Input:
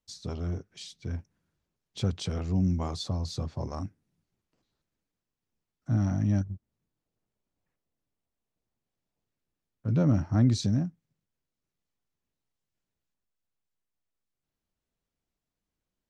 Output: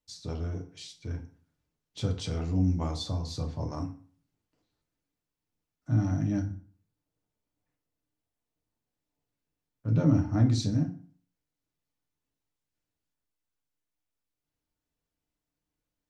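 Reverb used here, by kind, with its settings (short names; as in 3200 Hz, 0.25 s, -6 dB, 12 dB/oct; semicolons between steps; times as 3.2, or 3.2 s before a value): FDN reverb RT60 0.46 s, low-frequency decay 1.05×, high-frequency decay 0.75×, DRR 2.5 dB; gain -2.5 dB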